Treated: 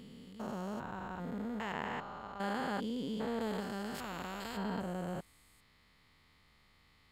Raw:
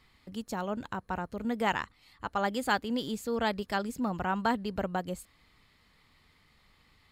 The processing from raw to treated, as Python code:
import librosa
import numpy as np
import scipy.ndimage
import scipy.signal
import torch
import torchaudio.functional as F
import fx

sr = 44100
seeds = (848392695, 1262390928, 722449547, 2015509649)

y = fx.spec_steps(x, sr, hold_ms=400)
y = fx.high_shelf(y, sr, hz=4100.0, db=-6.5, at=(1.72, 3.41))
y = fx.spectral_comp(y, sr, ratio=2.0, at=(3.94, 4.56), fade=0.02)
y = F.gain(torch.from_numpy(y), -1.0).numpy()